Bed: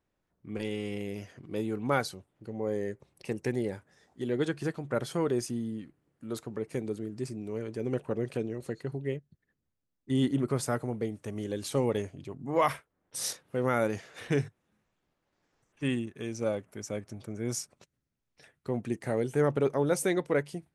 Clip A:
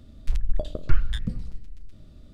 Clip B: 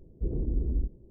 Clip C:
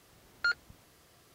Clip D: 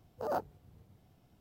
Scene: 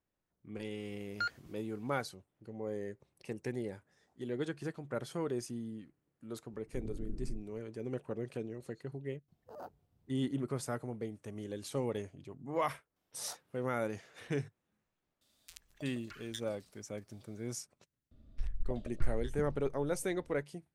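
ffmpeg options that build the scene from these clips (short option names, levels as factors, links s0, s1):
-filter_complex "[4:a]asplit=2[s0][s1];[1:a]asplit=2[s2][s3];[0:a]volume=0.422[s4];[3:a]agate=range=0.0224:threshold=0.00126:ratio=3:release=100:detection=peak[s5];[2:a]afreqshift=-30[s6];[s1]highpass=1300[s7];[s2]aderivative[s8];[s3]lowpass=f=2200:p=1[s9];[s5]atrim=end=1.34,asetpts=PTS-STARTPTS,volume=0.501,afade=t=in:d=0.004:c=hsin,afade=t=out:st=1.336:d=0.004:c=hsin,adelay=760[s10];[s6]atrim=end=1.1,asetpts=PTS-STARTPTS,volume=0.299,afade=t=in:d=0.004:c=hsin,afade=t=out:st=1.096:d=0.004:c=hsin,adelay=6520[s11];[s0]atrim=end=1.4,asetpts=PTS-STARTPTS,volume=0.2,afade=t=in:d=0.004:c=hsin,afade=t=out:st=1.396:d=0.004:c=hsin,adelay=9280[s12];[s7]atrim=end=1.4,asetpts=PTS-STARTPTS,volume=0.335,afade=t=in:d=0.004:c=hsin,afade=t=out:st=1.396:d=0.004:c=hsin,adelay=12960[s13];[s8]atrim=end=2.33,asetpts=PTS-STARTPTS,afade=t=in:d=0.004:c=hsin,afade=t=out:st=2.326:d=0.004:c=hsin,adelay=15210[s14];[s9]atrim=end=2.33,asetpts=PTS-STARTPTS,volume=0.237,afade=t=in:d=0.004:c=hsin,afade=t=out:st=2.326:d=0.004:c=hsin,adelay=18110[s15];[s4][s10][s11][s12][s13][s14][s15]amix=inputs=7:normalize=0"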